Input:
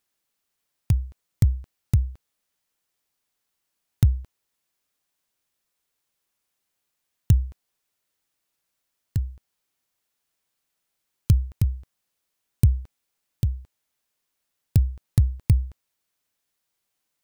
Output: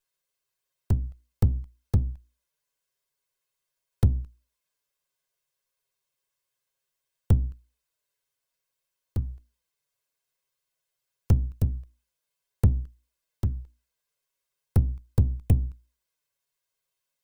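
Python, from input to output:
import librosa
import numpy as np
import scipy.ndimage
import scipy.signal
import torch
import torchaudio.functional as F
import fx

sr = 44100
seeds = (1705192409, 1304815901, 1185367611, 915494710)

y = fx.lower_of_two(x, sr, delay_ms=1.9)
y = fx.hum_notches(y, sr, base_hz=60, count=6)
y = fx.env_flanger(y, sr, rest_ms=7.4, full_db=-18.5)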